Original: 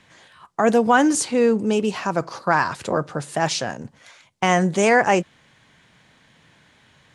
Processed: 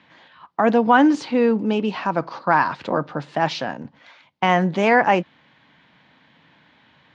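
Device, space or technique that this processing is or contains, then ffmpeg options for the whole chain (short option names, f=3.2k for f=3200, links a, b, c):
guitar cabinet: -af "highpass=94,equalizer=f=110:t=q:w=4:g=-7,equalizer=f=280:t=q:w=4:g=5,equalizer=f=400:t=q:w=4:g=-4,equalizer=f=910:t=q:w=4:g=4,lowpass=f=4.2k:w=0.5412,lowpass=f=4.2k:w=1.3066"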